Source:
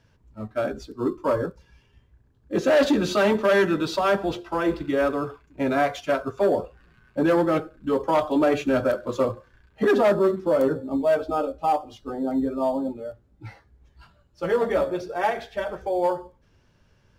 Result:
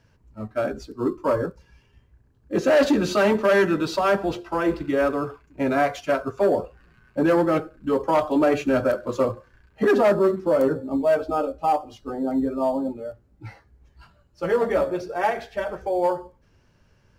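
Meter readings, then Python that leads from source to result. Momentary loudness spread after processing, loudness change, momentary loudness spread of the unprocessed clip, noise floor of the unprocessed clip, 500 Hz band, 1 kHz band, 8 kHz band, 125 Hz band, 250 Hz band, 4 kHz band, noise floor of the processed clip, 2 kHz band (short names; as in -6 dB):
11 LU, +1.0 dB, 11 LU, -62 dBFS, +1.0 dB, +1.0 dB, n/a, +1.0 dB, +1.0 dB, -1.0 dB, -61 dBFS, +1.0 dB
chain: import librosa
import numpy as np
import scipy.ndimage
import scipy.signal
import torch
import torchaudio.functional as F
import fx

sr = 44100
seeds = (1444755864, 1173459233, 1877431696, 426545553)

y = fx.peak_eq(x, sr, hz=3500.0, db=-6.0, octaves=0.21)
y = y * 10.0 ** (1.0 / 20.0)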